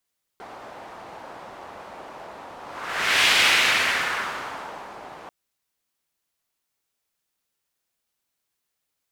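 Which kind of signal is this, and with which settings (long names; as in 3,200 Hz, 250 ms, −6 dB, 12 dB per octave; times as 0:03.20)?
pass-by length 4.89 s, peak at 0:02.89, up 0.73 s, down 1.88 s, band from 800 Hz, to 2,600 Hz, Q 1.6, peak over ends 23 dB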